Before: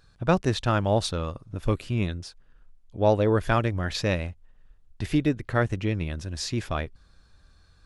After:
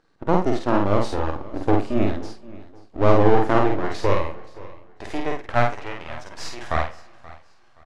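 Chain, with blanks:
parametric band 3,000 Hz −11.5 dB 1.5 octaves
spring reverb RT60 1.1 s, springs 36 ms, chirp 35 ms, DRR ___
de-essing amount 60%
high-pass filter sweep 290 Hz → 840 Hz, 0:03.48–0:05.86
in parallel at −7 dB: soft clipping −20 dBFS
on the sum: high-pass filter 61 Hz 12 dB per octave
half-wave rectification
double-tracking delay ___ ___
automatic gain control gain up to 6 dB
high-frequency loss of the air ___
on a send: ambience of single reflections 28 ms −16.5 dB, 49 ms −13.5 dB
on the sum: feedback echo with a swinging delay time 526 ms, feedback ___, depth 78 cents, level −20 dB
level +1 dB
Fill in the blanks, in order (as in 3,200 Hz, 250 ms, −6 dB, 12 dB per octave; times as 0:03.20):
18.5 dB, 50 ms, −2.5 dB, 94 metres, 30%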